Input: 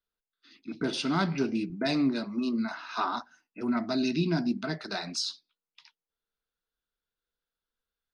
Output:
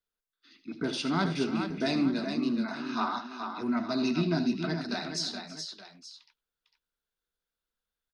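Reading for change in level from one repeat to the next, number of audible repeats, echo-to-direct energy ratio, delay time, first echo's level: no steady repeat, 4, -5.0 dB, 78 ms, -12.5 dB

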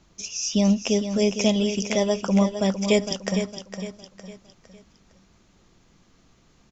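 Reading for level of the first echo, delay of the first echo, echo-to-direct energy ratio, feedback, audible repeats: -9.0 dB, 0.458 s, -8.5 dB, 39%, 4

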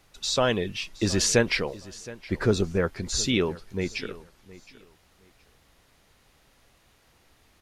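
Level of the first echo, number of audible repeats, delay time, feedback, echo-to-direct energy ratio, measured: -19.0 dB, 2, 0.718 s, 21%, -19.0 dB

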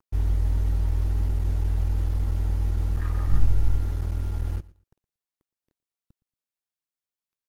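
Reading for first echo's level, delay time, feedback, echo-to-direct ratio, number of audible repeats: -21.0 dB, 0.116 s, 20%, -21.0 dB, 2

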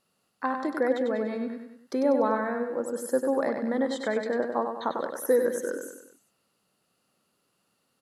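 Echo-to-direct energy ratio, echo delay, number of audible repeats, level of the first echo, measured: -5.0 dB, 97 ms, 4, -6.0 dB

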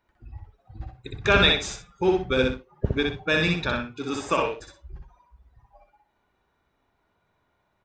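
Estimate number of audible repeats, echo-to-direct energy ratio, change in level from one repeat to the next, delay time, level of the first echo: 2, -2.5 dB, -11.5 dB, 62 ms, -3.0 dB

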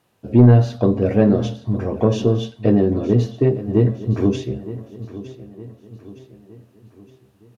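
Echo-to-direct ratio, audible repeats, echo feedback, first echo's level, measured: -14.5 dB, 3, 47%, -15.5 dB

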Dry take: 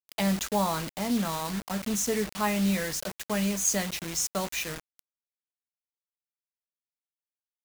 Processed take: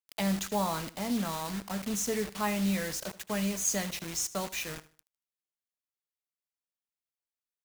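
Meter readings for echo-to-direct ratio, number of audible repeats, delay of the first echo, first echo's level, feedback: -16.5 dB, 2, 77 ms, -17.0 dB, 30%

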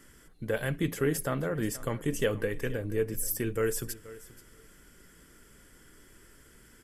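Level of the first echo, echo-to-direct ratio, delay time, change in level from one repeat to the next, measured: -18.0 dB, -18.0 dB, 0.48 s, -16.0 dB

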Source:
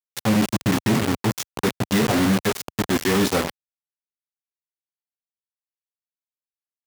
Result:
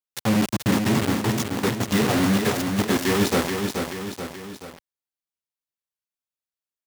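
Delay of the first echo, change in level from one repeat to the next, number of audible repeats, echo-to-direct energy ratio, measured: 0.43 s, -5.5 dB, 3, -4.0 dB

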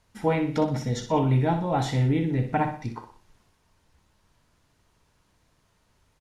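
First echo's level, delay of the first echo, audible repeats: -9.0 dB, 61 ms, 3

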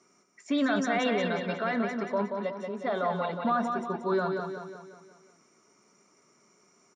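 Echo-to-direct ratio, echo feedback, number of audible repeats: -4.0 dB, 50%, 5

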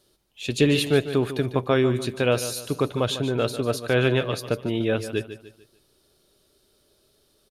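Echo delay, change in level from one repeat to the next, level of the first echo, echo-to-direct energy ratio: 0.148 s, -8.5 dB, -12.0 dB, -11.5 dB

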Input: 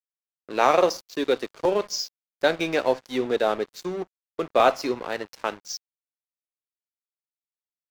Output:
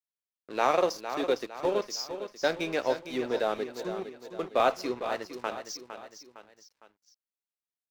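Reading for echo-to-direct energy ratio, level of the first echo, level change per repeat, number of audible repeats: -9.0 dB, -10.0 dB, -7.0 dB, 3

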